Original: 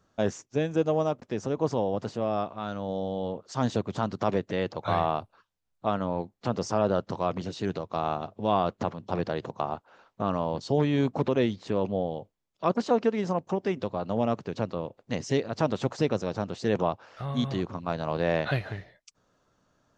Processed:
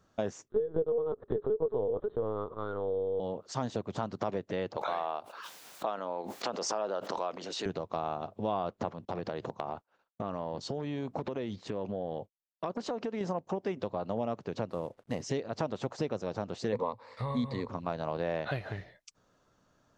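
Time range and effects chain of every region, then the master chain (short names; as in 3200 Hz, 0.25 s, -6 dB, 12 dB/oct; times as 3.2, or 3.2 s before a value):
0.48–3.2 bell 420 Hz +12.5 dB 0.74 oct + fixed phaser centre 680 Hz, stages 6 + LPC vocoder at 8 kHz pitch kept
4.77–7.66 HPF 300 Hz + low shelf 450 Hz -7 dB + backwards sustainer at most 39 dB/s
9.05–13.21 expander -46 dBFS + compressor, threshold -30 dBFS
14.7–15.22 CVSD 64 kbps + high shelf 4700 Hz -8.5 dB
16.72–17.69 gate with hold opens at -42 dBFS, closes at -47 dBFS + ripple EQ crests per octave 0.96, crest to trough 14 dB
whole clip: dynamic EQ 640 Hz, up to +4 dB, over -39 dBFS, Q 0.75; compressor 3:1, threshold -32 dBFS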